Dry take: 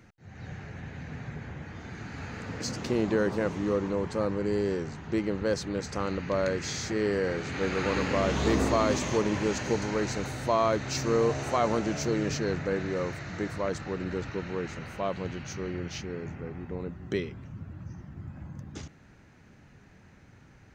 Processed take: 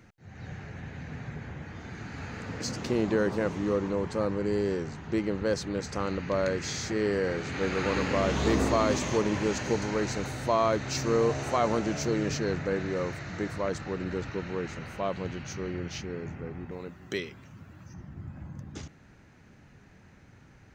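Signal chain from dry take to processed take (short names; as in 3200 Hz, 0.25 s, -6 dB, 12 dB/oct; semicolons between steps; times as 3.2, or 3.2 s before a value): 16.71–17.94 tilt +2.5 dB/oct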